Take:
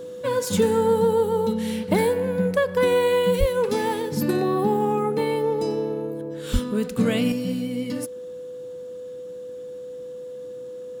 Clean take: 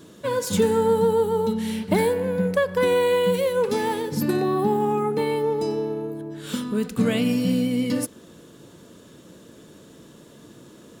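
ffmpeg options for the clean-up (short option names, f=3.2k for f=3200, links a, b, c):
-filter_complex "[0:a]bandreject=f=500:w=30,asplit=3[a][b][c];[a]afade=t=out:st=3.39:d=0.02[d];[b]highpass=f=140:w=0.5412,highpass=f=140:w=1.3066,afade=t=in:st=3.39:d=0.02,afade=t=out:st=3.51:d=0.02[e];[c]afade=t=in:st=3.51:d=0.02[f];[d][e][f]amix=inputs=3:normalize=0,asplit=3[g][h][i];[g]afade=t=out:st=6.52:d=0.02[j];[h]highpass=f=140:w=0.5412,highpass=f=140:w=1.3066,afade=t=in:st=6.52:d=0.02,afade=t=out:st=6.64:d=0.02[k];[i]afade=t=in:st=6.64:d=0.02[l];[j][k][l]amix=inputs=3:normalize=0,asetnsamples=n=441:p=0,asendcmd='7.32 volume volume 5dB',volume=0dB"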